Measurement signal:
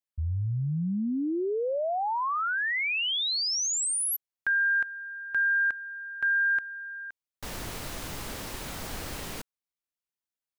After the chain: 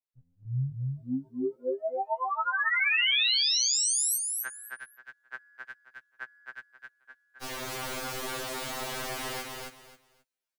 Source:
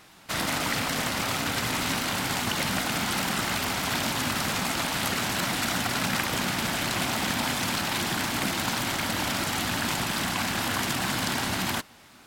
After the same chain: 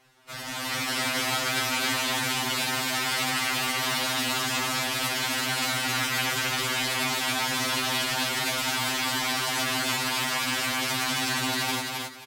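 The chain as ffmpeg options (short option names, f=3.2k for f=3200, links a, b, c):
-filter_complex "[0:a]acrossover=split=180|2000[a][b][c];[b]acompressor=threshold=-37dB:ratio=6:attack=14:release=51:knee=2.83:detection=peak[d];[a][d][c]amix=inputs=3:normalize=0,highshelf=f=4.8k:g=-4.5,aecho=1:1:266|532|798:0.708|0.156|0.0343,acrossover=split=300[e][f];[f]dynaudnorm=f=150:g=9:m=10dB[g];[e][g]amix=inputs=2:normalize=0,afftfilt=real='re*2.45*eq(mod(b,6),0)':imag='im*2.45*eq(mod(b,6),0)':win_size=2048:overlap=0.75,volume=-4.5dB"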